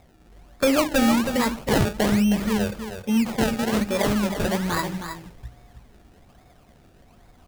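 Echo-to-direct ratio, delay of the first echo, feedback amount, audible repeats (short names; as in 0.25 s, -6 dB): -8.5 dB, 0.316 s, no steady repeat, 1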